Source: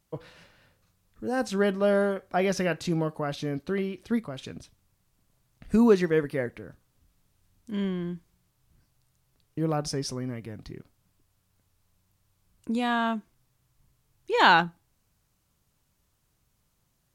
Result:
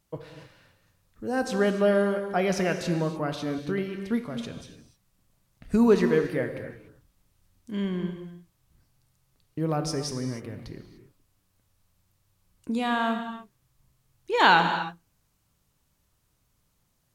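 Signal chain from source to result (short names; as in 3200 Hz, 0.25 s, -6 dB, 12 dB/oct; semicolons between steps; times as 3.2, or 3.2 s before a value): non-linear reverb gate 0.32 s flat, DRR 6.5 dB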